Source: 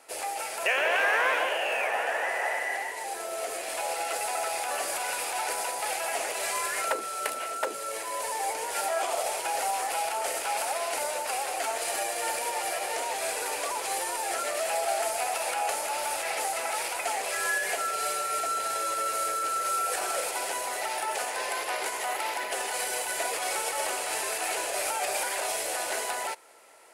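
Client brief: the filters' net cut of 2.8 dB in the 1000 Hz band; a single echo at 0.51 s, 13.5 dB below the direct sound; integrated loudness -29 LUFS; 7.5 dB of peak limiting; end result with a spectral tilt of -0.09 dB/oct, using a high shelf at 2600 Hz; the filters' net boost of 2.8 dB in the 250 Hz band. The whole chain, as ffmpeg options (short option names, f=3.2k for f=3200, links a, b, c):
-af "equalizer=f=250:t=o:g=5,equalizer=f=1k:t=o:g=-5,highshelf=f=2.6k:g=3.5,alimiter=limit=-21dB:level=0:latency=1,aecho=1:1:510:0.211,volume=0.5dB"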